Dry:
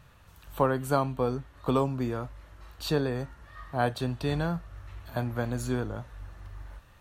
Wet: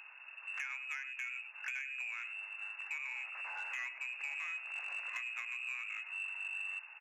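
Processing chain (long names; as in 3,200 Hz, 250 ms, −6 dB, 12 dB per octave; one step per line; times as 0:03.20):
0:02.94–0:05.09: linear delta modulator 32 kbit/s, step −38.5 dBFS
slap from a distant wall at 17 metres, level −16 dB
downward compressor 10 to 1, threshold −38 dBFS, peak gain reduction 19 dB
voice inversion scrambler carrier 2,700 Hz
soft clipping −34 dBFS, distortion −17 dB
high-pass filter 650 Hz 24 dB per octave
level +1.5 dB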